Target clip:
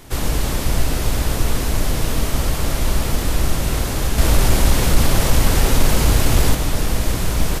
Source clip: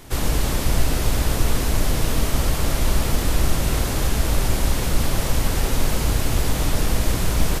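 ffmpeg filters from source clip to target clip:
-filter_complex "[0:a]asettb=1/sr,asplit=3[a][b][c];[a]atrim=end=4.184[d];[b]atrim=start=4.18:end=6.55,asetpts=PTS-STARTPTS,afade=t=in:d=0.004:c=qsin,afade=t=out:st=2.366:d=0.004:c=qsin,acontrast=31[e];[c]atrim=start=6.546[f];[d][e]acrossfade=d=0.004:c1=hsin:c2=qsin[g];[g][f]acrossfade=d=0.004:c1=qsin:c2=hsin,volume=1dB"

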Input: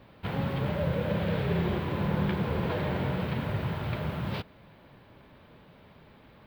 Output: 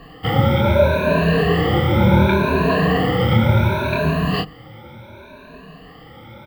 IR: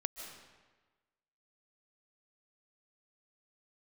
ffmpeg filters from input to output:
-filter_complex "[0:a]afftfilt=real='re*pow(10,23/40*sin(2*PI*(1.5*log(max(b,1)*sr/1024/100)/log(2)-(0.69)*(pts-256)/sr)))':imag='im*pow(10,23/40*sin(2*PI*(1.5*log(max(b,1)*sr/1024/100)/log(2)-(0.69)*(pts-256)/sr)))':win_size=1024:overlap=0.75,bandreject=f=50:t=h:w=6,bandreject=f=100:t=h:w=6,bandreject=f=150:t=h:w=6,bandreject=f=200:t=h:w=6,asplit=2[a][b];[b]adelay=26,volume=-3dB[c];[a][c]amix=inputs=2:normalize=0,volume=8dB"

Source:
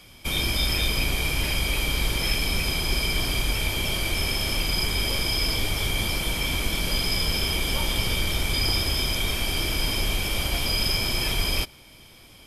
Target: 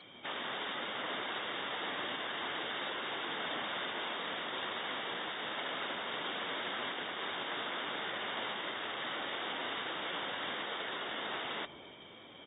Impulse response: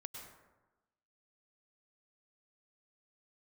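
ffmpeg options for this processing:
-filter_complex "[0:a]asplit=2[a][b];[b]adelay=266,lowpass=f=1k:p=1,volume=-20.5dB,asplit=2[c][d];[d]adelay=266,lowpass=f=1k:p=1,volume=0.35,asplit=2[e][f];[f]adelay=266,lowpass=f=1k:p=1,volume=0.35[g];[a][c][e][g]amix=inputs=4:normalize=0,aeval=exprs='(mod(22.4*val(0)+1,2)-1)/22.4':c=same,highpass=260,lowpass=5.1k,equalizer=f=2.5k:w=7.1:g=-11" -ar 32000 -c:a aac -b:a 16k

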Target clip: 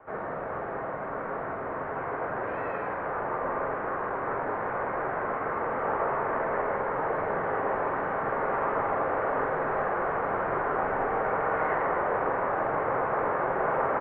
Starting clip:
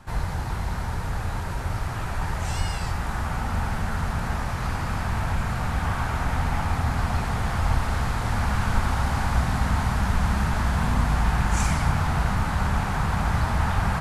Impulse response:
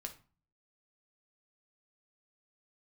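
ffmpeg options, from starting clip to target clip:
-filter_complex "[0:a]highpass=250,asplit=2[a][b];[b]adelay=45,volume=-6dB[c];[a][c]amix=inputs=2:normalize=0,asplit=2[d][e];[1:a]atrim=start_sample=2205,highshelf=f=8.3k:g=-11.5[f];[e][f]afir=irnorm=-1:irlink=0,volume=4dB[g];[d][g]amix=inputs=2:normalize=0,highpass=f=400:t=q:w=0.5412,highpass=f=400:t=q:w=1.307,lowpass=f=2.2k:t=q:w=0.5176,lowpass=f=2.2k:t=q:w=0.7071,lowpass=f=2.2k:t=q:w=1.932,afreqshift=-270,asplit=2[h][i];[i]aecho=0:1:159:0.422[j];[h][j]amix=inputs=2:normalize=0,volume=-4.5dB"

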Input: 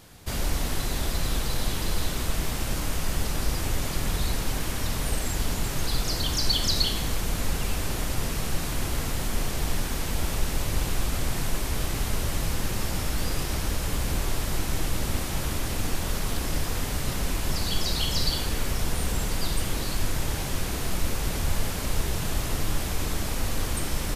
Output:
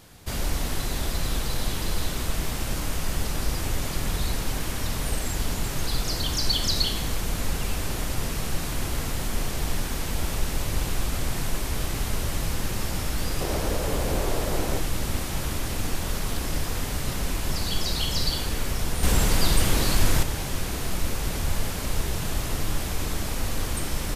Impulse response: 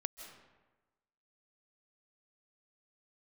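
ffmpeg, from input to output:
-filter_complex "[0:a]asettb=1/sr,asplit=3[a][b][c];[a]atrim=end=13.414[d];[b]atrim=start=13.41:end=14.79,asetpts=PTS-STARTPTS,afade=t=in:d=0.004:c=qsin,afade=t=out:st=1.376:d=0.004:c=qsin,equalizer=f=520:w=0.97:g=10.5[e];[c]atrim=start=14.786[f];[d][e]acrossfade=d=0.004:c1=hsin:c2=qsin[g];[g][f]acrossfade=d=0.004:c1=qsin:c2=hsin,asettb=1/sr,asplit=3[h][i][j];[h]atrim=end=19.034[k];[i]atrim=start=19.03:end=20.23,asetpts=PTS-STARTPTS,afade=t=in:d=0.004:c=qsin,afade=t=out:st=1.196:d=0.004:c=qsin,acontrast=70[l];[j]atrim=start=20.226[m];[k][l]acrossfade=d=0.004:c1=hsin:c2=qsin[n];[n][m]acrossfade=d=0.004:c1=qsin:c2=hsin"

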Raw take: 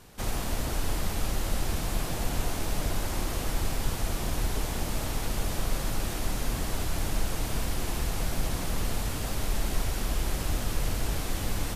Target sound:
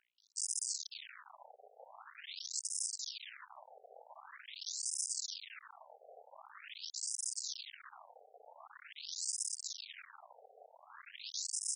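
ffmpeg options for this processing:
-filter_complex "[0:a]aeval=exprs='0.2*(cos(1*acos(clip(val(0)/0.2,-1,1)))-cos(1*PI/2))+0.02*(cos(2*acos(clip(val(0)/0.2,-1,1)))-cos(2*PI/2))+0.0141*(cos(5*acos(clip(val(0)/0.2,-1,1)))-cos(5*PI/2))+0.0251*(cos(6*acos(clip(val(0)/0.2,-1,1)))-cos(6*PI/2))+0.0112*(cos(8*acos(clip(val(0)/0.2,-1,1)))-cos(8*PI/2))':c=same,asplit=2[a][b];[b]adelay=17,volume=-10dB[c];[a][c]amix=inputs=2:normalize=0,acrossover=split=190|2300[d][e][f];[f]adelay=180[g];[e]adelay=520[h];[d][h][g]amix=inputs=3:normalize=0,aeval=exprs='val(0)+0.0126*(sin(2*PI*60*n/s)+sin(2*PI*2*60*n/s)/2+sin(2*PI*3*60*n/s)/3+sin(2*PI*4*60*n/s)/4+sin(2*PI*5*60*n/s)/5)':c=same,areverse,acompressor=mode=upward:threshold=-25dB:ratio=2.5,areverse,alimiter=limit=-21dB:level=0:latency=1:release=47,volume=33dB,asoftclip=hard,volume=-33dB,lowshelf=f=280:g=6,anlmdn=0.0251,aderivative,afftfilt=real='re*between(b*sr/1024,560*pow(7100/560,0.5+0.5*sin(2*PI*0.45*pts/sr))/1.41,560*pow(7100/560,0.5+0.5*sin(2*PI*0.45*pts/sr))*1.41)':imag='im*between(b*sr/1024,560*pow(7100/560,0.5+0.5*sin(2*PI*0.45*pts/sr))/1.41,560*pow(7100/560,0.5+0.5*sin(2*PI*0.45*pts/sr))*1.41)':win_size=1024:overlap=0.75,volume=10dB"

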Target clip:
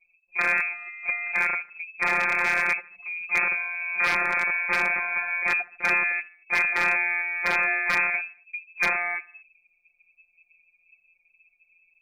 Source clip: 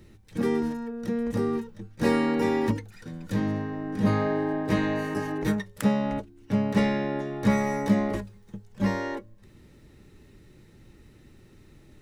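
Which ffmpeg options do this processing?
-af "aeval=exprs='(mod(8.91*val(0)+1,2)-1)/8.91':c=same,afftfilt=real='hypot(re,im)*cos(PI*b)':imag='0':win_size=1024:overlap=0.75,lowpass=f=2.2k:t=q:w=0.5098,lowpass=f=2.2k:t=q:w=0.6013,lowpass=f=2.2k:t=q:w=0.9,lowpass=f=2.2k:t=q:w=2.563,afreqshift=-2600,anlmdn=0.0631,aecho=1:1:76|152|228:0.1|0.044|0.0194,aeval=exprs='0.0891*(abs(mod(val(0)/0.0891+3,4)-2)-1)':c=same,volume=7dB"

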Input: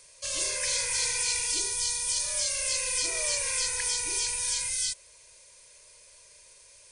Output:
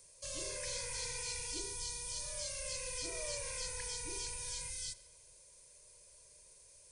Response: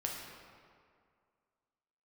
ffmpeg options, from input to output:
-filter_complex "[0:a]equalizer=f=2.2k:w=0.34:g=-12.5,acrossover=split=5100[a][b];[b]acompressor=threshold=-43dB:ratio=4:attack=1:release=60[c];[a][c]amix=inputs=2:normalize=0,asplit=2[d][e];[1:a]atrim=start_sample=2205,asetrate=52920,aresample=44100[f];[e][f]afir=irnorm=-1:irlink=0,volume=-10.5dB[g];[d][g]amix=inputs=2:normalize=0,volume=-2.5dB"

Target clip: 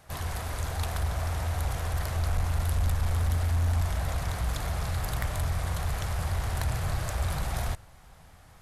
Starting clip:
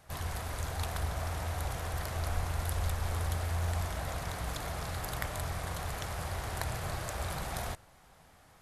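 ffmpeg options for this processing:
-af "acontrast=65,asubboost=boost=2:cutoff=170,asoftclip=type=tanh:threshold=-16dB,volume=-3dB"

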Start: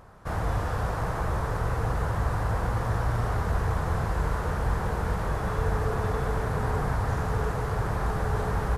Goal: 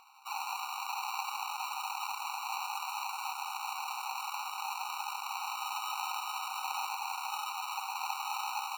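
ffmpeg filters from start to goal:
-af "acrusher=samples=26:mix=1:aa=0.000001,afftfilt=real='re*eq(mod(floor(b*sr/1024/750),2),1)':imag='im*eq(mod(floor(b*sr/1024/750),2),1)':win_size=1024:overlap=0.75"

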